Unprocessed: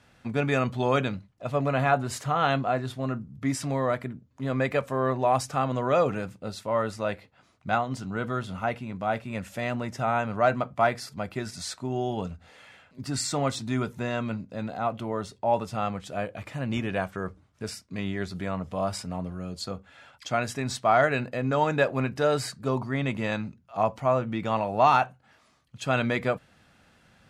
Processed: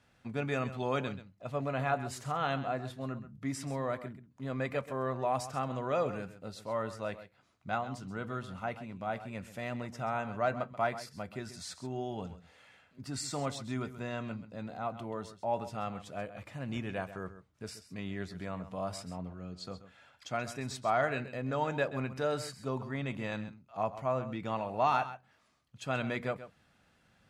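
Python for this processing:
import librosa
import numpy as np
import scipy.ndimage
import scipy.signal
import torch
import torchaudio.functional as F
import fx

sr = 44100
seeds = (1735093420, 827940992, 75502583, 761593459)

p1 = fx.lowpass(x, sr, hz=6000.0, slope=12, at=(19.13, 19.65))
p2 = p1 + fx.echo_single(p1, sr, ms=132, db=-13.5, dry=0)
y = p2 * 10.0 ** (-8.5 / 20.0)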